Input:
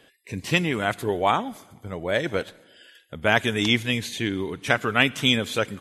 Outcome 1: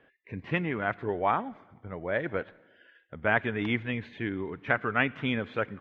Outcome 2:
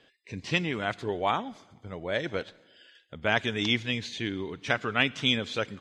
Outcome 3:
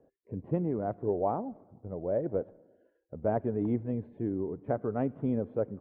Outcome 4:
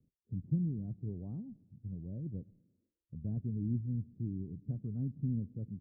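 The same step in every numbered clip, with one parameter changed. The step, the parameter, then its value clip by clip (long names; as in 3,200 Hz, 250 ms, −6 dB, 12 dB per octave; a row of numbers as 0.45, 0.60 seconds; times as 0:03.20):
transistor ladder low-pass, frequency: 2,400, 6,700, 790, 220 Hertz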